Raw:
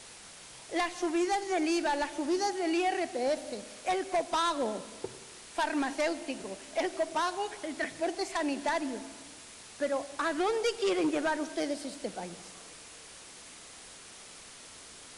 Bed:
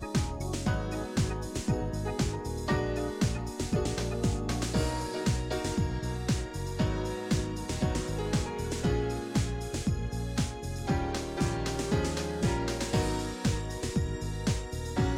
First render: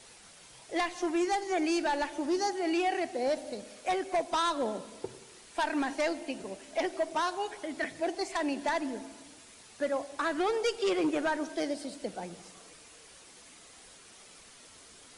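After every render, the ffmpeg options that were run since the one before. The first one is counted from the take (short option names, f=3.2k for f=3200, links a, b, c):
-af "afftdn=nr=6:nf=-50"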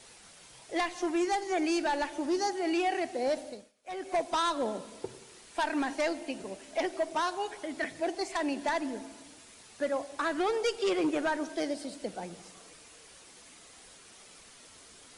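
-filter_complex "[0:a]asplit=3[a][b][c];[a]atrim=end=3.72,asetpts=PTS-STARTPTS,afade=t=out:st=3.4:d=0.32:silence=0.0668344[d];[b]atrim=start=3.72:end=3.83,asetpts=PTS-STARTPTS,volume=-23.5dB[e];[c]atrim=start=3.83,asetpts=PTS-STARTPTS,afade=t=in:d=0.32:silence=0.0668344[f];[d][e][f]concat=n=3:v=0:a=1"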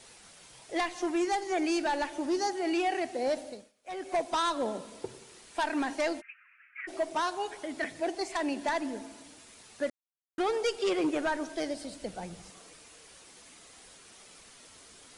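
-filter_complex "[0:a]asplit=3[a][b][c];[a]afade=t=out:st=6.2:d=0.02[d];[b]asuperpass=centerf=1800:order=12:qfactor=1.4,afade=t=in:st=6.2:d=0.02,afade=t=out:st=6.87:d=0.02[e];[c]afade=t=in:st=6.87:d=0.02[f];[d][e][f]amix=inputs=3:normalize=0,asettb=1/sr,asplit=3[g][h][i];[g]atrim=end=11.074[j];[h]atrim=start=11.07:end=12.5,asetpts=PTS-STARTPTS,afade=t=in:d=0.004:c=qsin,afade=t=out:st=1.426:d=0.004:c=qsin,asubboost=boost=10:cutoff=130[k];[i]atrim=start=12.496[l];[j][k]acrossfade=d=0.004:c1=hsin:c2=qsin[m];[m][l]acrossfade=d=0.004:c1=qsin:c2=hsin,asplit=3[n][o][p];[n]atrim=end=9.9,asetpts=PTS-STARTPTS,afade=t=out:st=9.896:d=0.004:c=hsin[q];[o]atrim=start=9.9:end=10.38,asetpts=PTS-STARTPTS,volume=0[r];[p]atrim=start=10.38,asetpts=PTS-STARTPTS,afade=t=in:d=0.004:c=hsin[s];[q][r][s]concat=n=3:v=0:a=1"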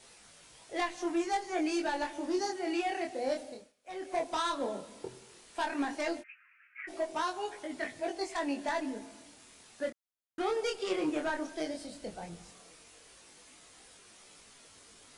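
-af "flanger=delay=19:depth=7.8:speed=0.14"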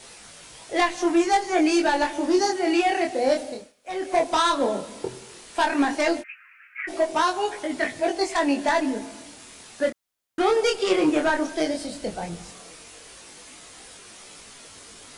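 -af "volume=11.5dB"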